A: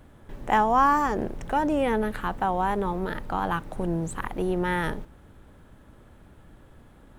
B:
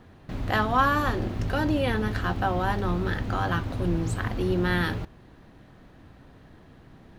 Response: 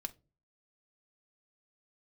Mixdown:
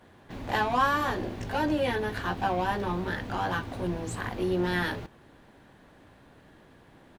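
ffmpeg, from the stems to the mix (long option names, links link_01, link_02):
-filter_complex "[0:a]asplit=2[link_01][link_02];[link_02]highpass=frequency=720:poles=1,volume=22dB,asoftclip=type=tanh:threshold=-9.5dB[link_03];[link_01][link_03]amix=inputs=2:normalize=0,lowpass=frequency=4900:poles=1,volume=-6dB,volume=-15.5dB[link_04];[1:a]lowshelf=frequency=140:gain=-9.5,adelay=13,volume=-2.5dB[link_05];[link_04][link_05]amix=inputs=2:normalize=0,bandreject=frequency=1300:width=12"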